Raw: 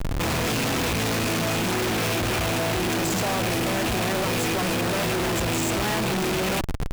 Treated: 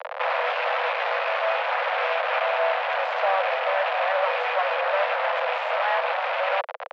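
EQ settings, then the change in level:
Butterworth high-pass 510 Hz 96 dB per octave
low-pass filter 2,800 Hz 12 dB per octave
high-frequency loss of the air 320 metres
+7.0 dB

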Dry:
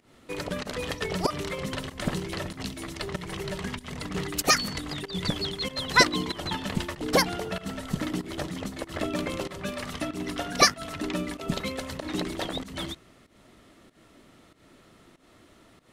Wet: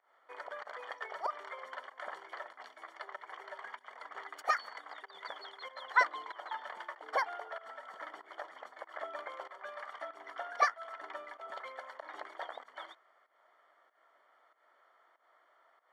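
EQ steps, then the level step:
Savitzky-Golay smoothing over 41 samples
high-pass filter 690 Hz 24 dB per octave
−4.0 dB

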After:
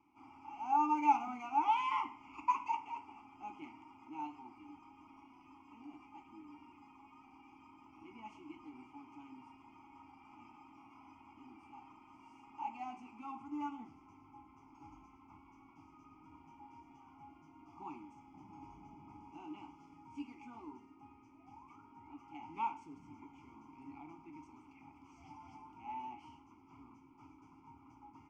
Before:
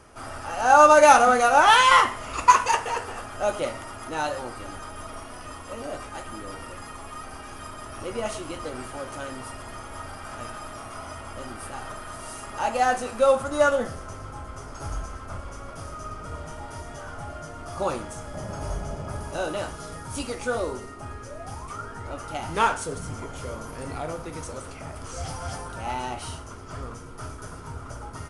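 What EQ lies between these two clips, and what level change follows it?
formant filter u
phaser with its sweep stopped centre 2,600 Hz, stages 8
−3.5 dB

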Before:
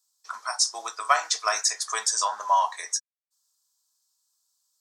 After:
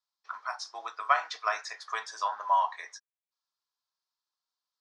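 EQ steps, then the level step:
high-frequency loss of the air 330 metres
low-shelf EQ 460 Hz −11 dB
0.0 dB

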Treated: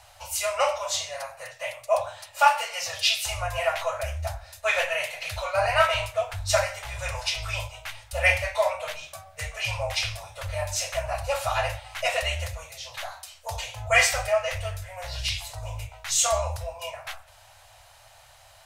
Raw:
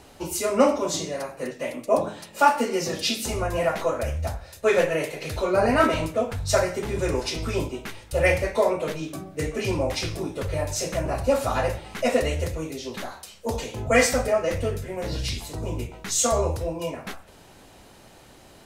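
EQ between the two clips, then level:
elliptic band-stop filter 110–630 Hz, stop band 40 dB
low-shelf EQ 180 Hz −3.5 dB
dynamic equaliser 2,800 Hz, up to +7 dB, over −44 dBFS, Q 1.6
0.0 dB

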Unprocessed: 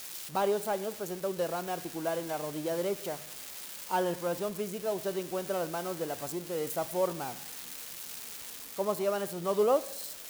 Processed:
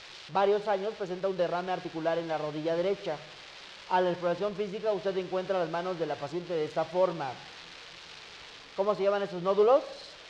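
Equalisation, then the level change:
low-pass filter 4,400 Hz 24 dB per octave
parametric band 240 Hz −13 dB 0.31 octaves
+3.5 dB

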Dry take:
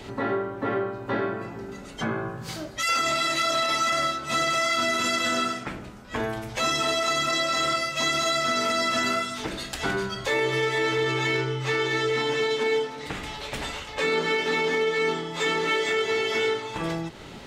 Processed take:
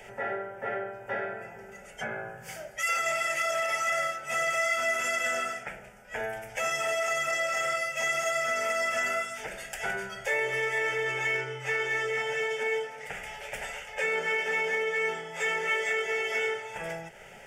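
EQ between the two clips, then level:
parametric band 82 Hz −11 dB 1.3 octaves
low-shelf EQ 370 Hz −6.5 dB
phaser with its sweep stopped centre 1,100 Hz, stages 6
0.0 dB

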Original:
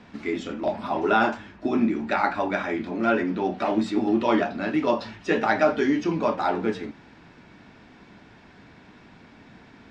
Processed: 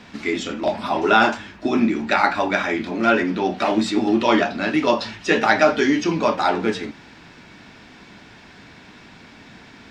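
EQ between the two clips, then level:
high-shelf EQ 2,200 Hz +10 dB
+3.5 dB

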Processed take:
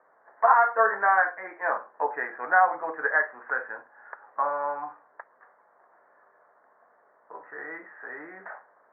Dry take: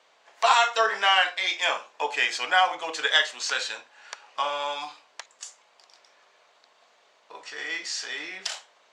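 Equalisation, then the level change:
Butterworth low-pass 1,800 Hz 72 dB per octave
+1.5 dB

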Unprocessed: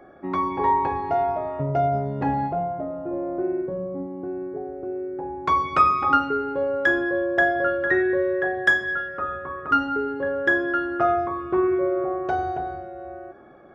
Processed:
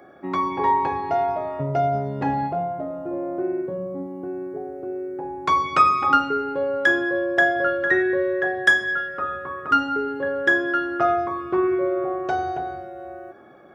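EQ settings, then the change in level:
high-pass filter 88 Hz
high-shelf EQ 3,200 Hz +10 dB
0.0 dB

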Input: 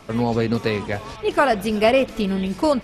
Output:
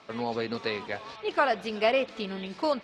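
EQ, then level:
high-pass filter 600 Hz 6 dB per octave
high-frequency loss of the air 110 metres
parametric band 4,100 Hz +5.5 dB 0.41 octaves
−4.5 dB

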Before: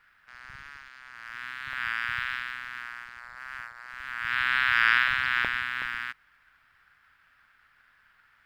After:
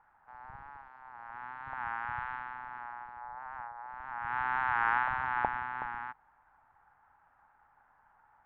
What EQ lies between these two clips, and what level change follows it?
low-pass with resonance 850 Hz, resonance Q 9.4
−1.5 dB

